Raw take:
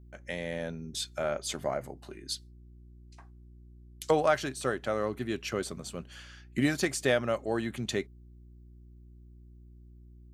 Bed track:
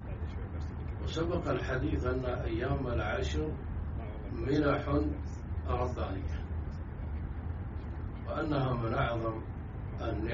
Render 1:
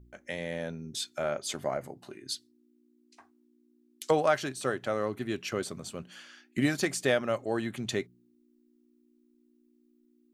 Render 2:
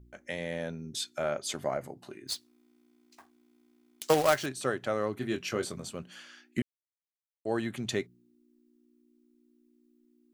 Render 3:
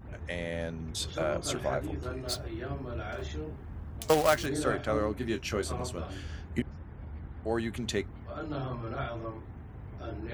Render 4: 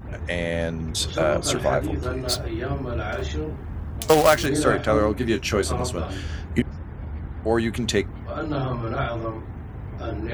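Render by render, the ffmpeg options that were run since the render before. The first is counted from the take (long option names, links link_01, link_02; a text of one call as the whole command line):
ffmpeg -i in.wav -af "bandreject=frequency=60:width_type=h:width=4,bandreject=frequency=120:width_type=h:width=4,bandreject=frequency=180:width_type=h:width=4" out.wav
ffmpeg -i in.wav -filter_complex "[0:a]asettb=1/sr,asplit=3[link_01][link_02][link_03];[link_01]atrim=end=2.274[link_04];[link_02]atrim=start=2.27:end=4.46,asetpts=PTS-STARTPTS,afade=type=in:duration=0.004:curve=qsin,afade=type=out:start_time=2.186:duration=0.004:curve=qsin,acrusher=bits=2:mode=log:mix=0:aa=0.000001[link_05];[link_03]atrim=start=4.456[link_06];[link_04][link_05]acrossfade=duration=0.004:curve1=hsin:curve2=qsin[link_07];[link_07][link_06]acrossfade=duration=0.004:curve1=qsin:curve2=hsin,asettb=1/sr,asplit=3[link_08][link_09][link_10];[link_08]atrim=end=5.194[link_11];[link_09]atrim=start=5.19:end=5.86,asetpts=PTS-STARTPTS,afade=type=in:duration=0.004:curve=qsin,afade=type=out:start_time=0.666:duration=0.004:curve=qsin,asplit=2[link_12][link_13];[link_13]adelay=23,volume=-8dB[link_14];[link_12][link_14]amix=inputs=2:normalize=0,atrim=end_sample=29547[link_15];[link_10]atrim=start=5.856[link_16];[link_11][link_15]acrossfade=duration=0.004:curve1=hsin:curve2=qsin[link_17];[link_17][link_16]acrossfade=duration=0.004:curve1=qsin:curve2=hsin,asplit=3[link_18][link_19][link_20];[link_18]atrim=end=6.62,asetpts=PTS-STARTPTS,afade=type=out:start_time=6.616:duration=0.004:curve=hsin[link_21];[link_19]atrim=start=6.62:end=7.45,asetpts=PTS-STARTPTS,volume=0[link_22];[link_20]atrim=start=7.45,asetpts=PTS-STARTPTS,afade=type=in:duration=0.004:curve=hsin[link_23];[link_21][link_22][link_23]concat=n=3:v=0:a=1" out.wav
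ffmpeg -i in.wav -i bed.wav -filter_complex "[1:a]volume=-4.5dB[link_01];[0:a][link_01]amix=inputs=2:normalize=0" out.wav
ffmpeg -i in.wav -af "volume=9.5dB,alimiter=limit=-3dB:level=0:latency=1" out.wav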